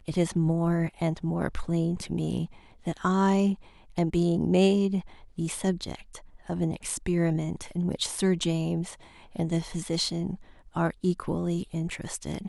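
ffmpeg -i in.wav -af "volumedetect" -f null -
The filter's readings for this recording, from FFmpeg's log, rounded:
mean_volume: -27.9 dB
max_volume: -9.6 dB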